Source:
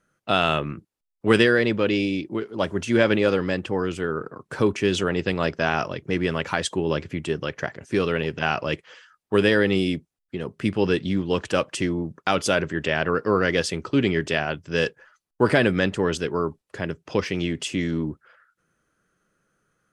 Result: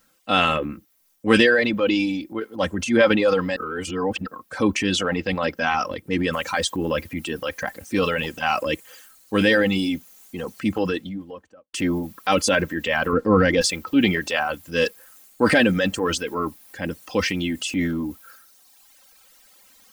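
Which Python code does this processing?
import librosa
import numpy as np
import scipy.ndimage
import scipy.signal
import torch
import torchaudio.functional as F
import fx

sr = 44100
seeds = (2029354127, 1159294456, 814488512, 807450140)

y = fx.noise_floor_step(x, sr, seeds[0], at_s=6.33, before_db=-68, after_db=-54, tilt_db=0.0)
y = fx.studio_fade_out(y, sr, start_s=10.47, length_s=1.27)
y = fx.tilt_eq(y, sr, slope=-2.5, at=(13.13, 13.61))
y = fx.edit(y, sr, fx.reverse_span(start_s=3.56, length_s=0.7), tone=tone)
y = fx.dereverb_blind(y, sr, rt60_s=1.8)
y = y + 0.7 * np.pad(y, (int(3.8 * sr / 1000.0), 0))[:len(y)]
y = fx.transient(y, sr, attack_db=-4, sustain_db=6)
y = y * librosa.db_to_amplitude(2.0)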